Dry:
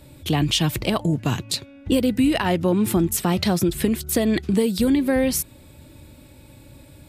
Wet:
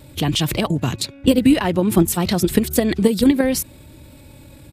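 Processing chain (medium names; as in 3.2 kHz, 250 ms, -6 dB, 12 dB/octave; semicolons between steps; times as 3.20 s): pre-echo 30 ms -23 dB; vibrato 0.54 Hz 7.3 cents; tempo 1.5×; in parallel at +2 dB: level held to a coarse grid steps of 18 dB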